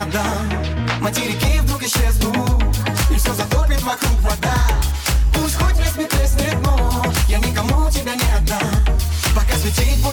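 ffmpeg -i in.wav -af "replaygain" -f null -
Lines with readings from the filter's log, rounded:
track_gain = +2.5 dB
track_peak = 0.295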